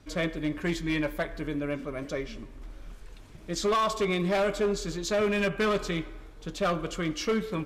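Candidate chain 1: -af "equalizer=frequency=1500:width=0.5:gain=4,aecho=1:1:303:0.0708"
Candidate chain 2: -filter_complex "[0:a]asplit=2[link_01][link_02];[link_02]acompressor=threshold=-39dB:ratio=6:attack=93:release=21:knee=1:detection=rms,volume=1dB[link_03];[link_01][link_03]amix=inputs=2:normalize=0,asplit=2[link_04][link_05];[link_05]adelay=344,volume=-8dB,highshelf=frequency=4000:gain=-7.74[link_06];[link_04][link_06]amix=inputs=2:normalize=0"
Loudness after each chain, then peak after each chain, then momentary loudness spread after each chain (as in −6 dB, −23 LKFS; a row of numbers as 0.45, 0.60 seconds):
−27.5, −25.5 LKFS; −16.5, −14.0 dBFS; 16, 14 LU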